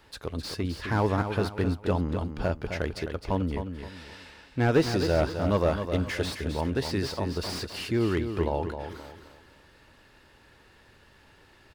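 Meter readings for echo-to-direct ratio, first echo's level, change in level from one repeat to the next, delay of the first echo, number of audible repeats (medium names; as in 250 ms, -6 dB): -7.5 dB, -8.0 dB, -9.5 dB, 261 ms, 3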